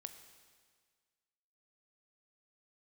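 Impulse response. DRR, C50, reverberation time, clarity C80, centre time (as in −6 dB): 8.0 dB, 9.5 dB, 1.7 s, 10.5 dB, 19 ms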